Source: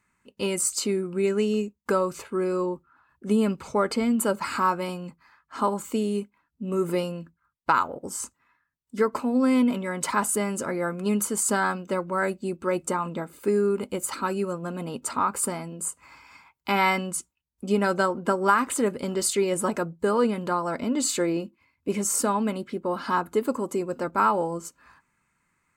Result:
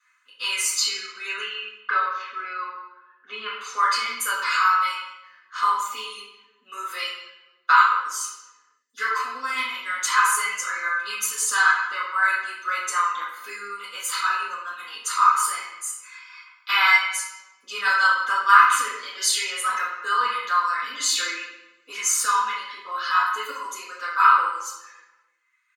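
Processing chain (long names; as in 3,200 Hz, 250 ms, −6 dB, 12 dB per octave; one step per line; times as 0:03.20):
0:01.40–0:03.61: low-pass filter 3,500 Hz 24 dB per octave
reverb reduction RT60 1.6 s
high-pass filter 1,300 Hz 24 dB per octave
comb filter 4 ms, depth 48%
convolution reverb RT60 1.1 s, pre-delay 3 ms, DRR −9.5 dB
level −1 dB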